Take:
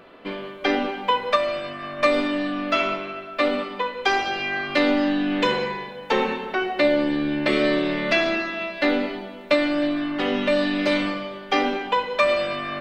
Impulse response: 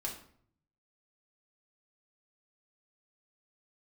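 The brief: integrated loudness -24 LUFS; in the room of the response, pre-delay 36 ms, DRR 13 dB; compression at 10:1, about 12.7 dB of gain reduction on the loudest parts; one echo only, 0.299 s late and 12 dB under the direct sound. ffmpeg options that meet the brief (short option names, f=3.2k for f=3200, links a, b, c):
-filter_complex "[0:a]acompressor=threshold=-28dB:ratio=10,aecho=1:1:299:0.251,asplit=2[a][b];[1:a]atrim=start_sample=2205,adelay=36[c];[b][c]afir=irnorm=-1:irlink=0,volume=-14dB[d];[a][d]amix=inputs=2:normalize=0,volume=7.5dB"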